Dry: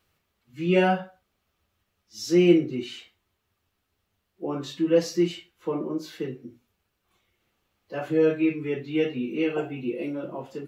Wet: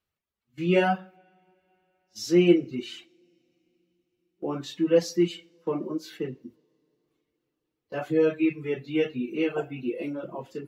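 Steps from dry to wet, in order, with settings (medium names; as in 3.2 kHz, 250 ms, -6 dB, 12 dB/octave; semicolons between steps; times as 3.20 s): gate -46 dBFS, range -14 dB; reverb removal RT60 0.68 s; two-slope reverb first 0.5 s, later 4 s, from -21 dB, DRR 19.5 dB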